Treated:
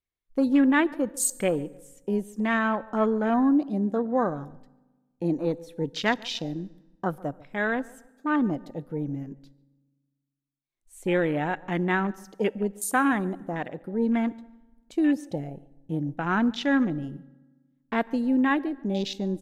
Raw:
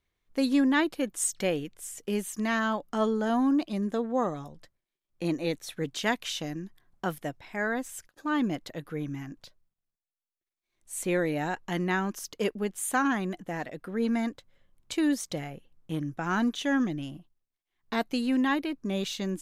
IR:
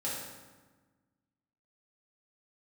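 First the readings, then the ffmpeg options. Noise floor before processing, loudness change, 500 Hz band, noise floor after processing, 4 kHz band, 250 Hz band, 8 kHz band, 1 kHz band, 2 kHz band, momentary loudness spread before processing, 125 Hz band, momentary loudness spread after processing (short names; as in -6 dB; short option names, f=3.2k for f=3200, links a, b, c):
under -85 dBFS, +3.0 dB, +3.0 dB, -79 dBFS, -1.0 dB, +3.5 dB, +0.5 dB, +3.0 dB, +3.0 dB, 11 LU, +3.5 dB, 12 LU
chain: -filter_complex "[0:a]afwtdn=0.0141,asplit=2[a][b];[b]adelay=143,lowpass=f=2k:p=1,volume=-22dB,asplit=2[c][d];[d]adelay=143,lowpass=f=2k:p=1,volume=0.35[e];[a][c][e]amix=inputs=3:normalize=0,asplit=2[f][g];[1:a]atrim=start_sample=2205,highshelf=f=4.8k:g=10[h];[g][h]afir=irnorm=-1:irlink=0,volume=-27dB[i];[f][i]amix=inputs=2:normalize=0,volume=3dB"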